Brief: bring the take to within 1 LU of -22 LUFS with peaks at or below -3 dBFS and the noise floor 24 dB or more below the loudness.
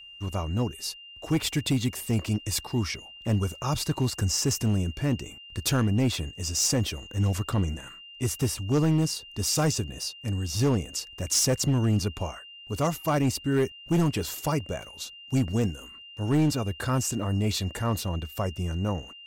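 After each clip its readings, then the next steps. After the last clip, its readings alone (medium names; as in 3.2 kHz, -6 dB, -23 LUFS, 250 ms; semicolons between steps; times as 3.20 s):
clipped samples 1.5%; clipping level -18.0 dBFS; steady tone 2.8 kHz; tone level -44 dBFS; loudness -27.5 LUFS; peak level -18.0 dBFS; loudness target -22.0 LUFS
-> clip repair -18 dBFS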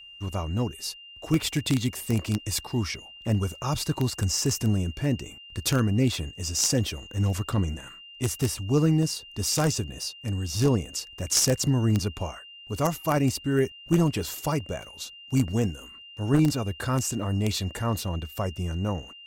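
clipped samples 0.0%; steady tone 2.8 kHz; tone level -44 dBFS
-> band-stop 2.8 kHz, Q 30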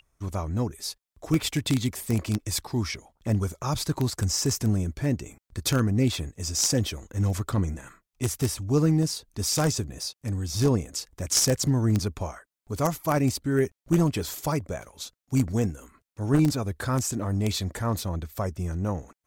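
steady tone not found; loudness -27.0 LUFS; peak level -9.0 dBFS; loudness target -22.0 LUFS
-> trim +5 dB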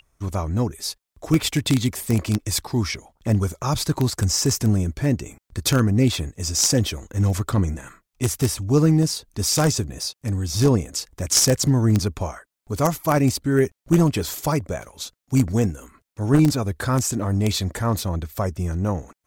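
loudness -22.0 LUFS; peak level -4.0 dBFS; noise floor -85 dBFS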